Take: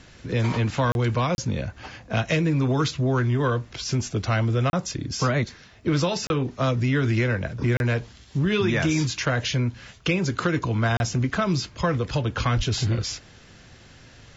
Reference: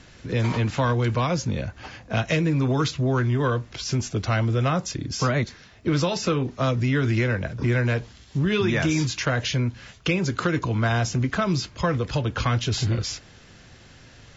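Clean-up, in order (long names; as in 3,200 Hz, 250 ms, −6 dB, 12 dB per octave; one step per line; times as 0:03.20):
0:12.56–0:12.68: high-pass filter 140 Hz 24 dB per octave
repair the gap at 0:00.92/0:01.35/0:04.70/0:06.27/0:07.77/0:10.97, 31 ms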